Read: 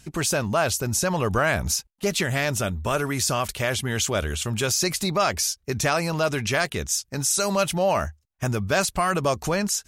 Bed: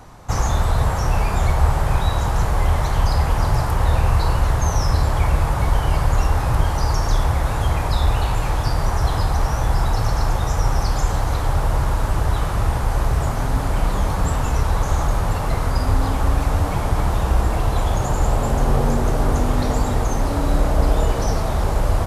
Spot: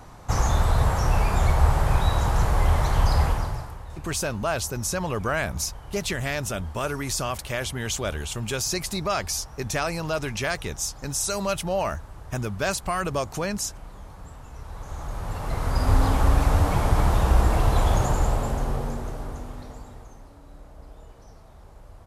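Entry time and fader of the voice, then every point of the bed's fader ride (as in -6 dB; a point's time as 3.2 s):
3.90 s, -4.0 dB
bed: 3.25 s -2.5 dB
3.85 s -22.5 dB
14.49 s -22.5 dB
15.95 s -1 dB
17.98 s -1 dB
20.39 s -28.5 dB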